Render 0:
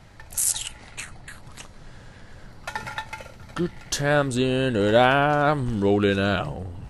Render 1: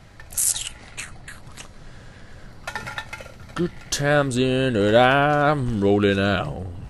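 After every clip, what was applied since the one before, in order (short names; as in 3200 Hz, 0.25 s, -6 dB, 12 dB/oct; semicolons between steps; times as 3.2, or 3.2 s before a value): notch 890 Hz, Q 12; gain +2 dB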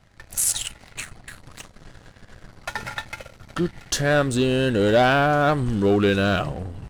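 sample leveller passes 2; gain -7 dB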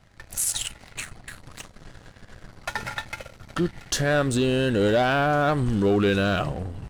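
limiter -14.5 dBFS, peak gain reduction 5.5 dB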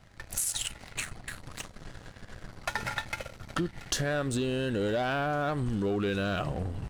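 compressor 6:1, threshold -27 dBFS, peak gain reduction 9 dB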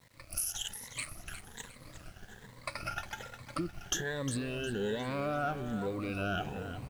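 moving spectral ripple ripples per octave 1, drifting +1.2 Hz, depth 18 dB; bit-crush 9-bit; on a send: feedback echo 0.357 s, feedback 40%, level -11.5 dB; on the sum: gain -8.5 dB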